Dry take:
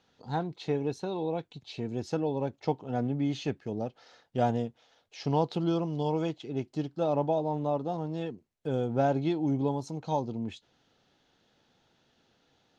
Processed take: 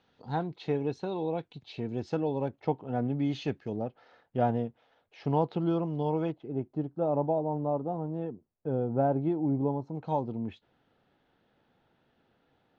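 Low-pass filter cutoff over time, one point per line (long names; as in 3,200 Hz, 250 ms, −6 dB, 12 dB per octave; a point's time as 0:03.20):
3,800 Hz
from 0:02.48 2,400 Hz
from 0:03.10 4,600 Hz
from 0:03.76 2,200 Hz
from 0:06.32 1,100 Hz
from 0:09.95 2,200 Hz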